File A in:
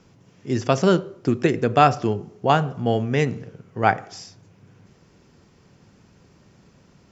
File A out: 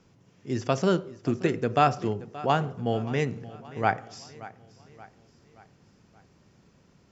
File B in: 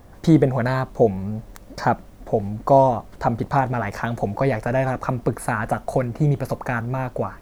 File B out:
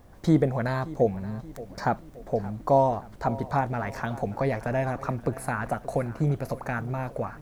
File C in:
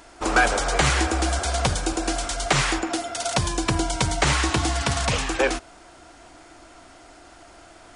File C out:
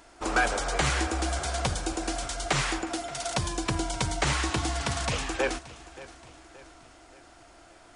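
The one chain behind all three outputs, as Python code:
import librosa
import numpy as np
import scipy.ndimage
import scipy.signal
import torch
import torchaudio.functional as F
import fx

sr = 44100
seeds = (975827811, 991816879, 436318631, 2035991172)

y = fx.echo_feedback(x, sr, ms=576, feedback_pct=48, wet_db=-18)
y = y * librosa.db_to_amplitude(-6.0)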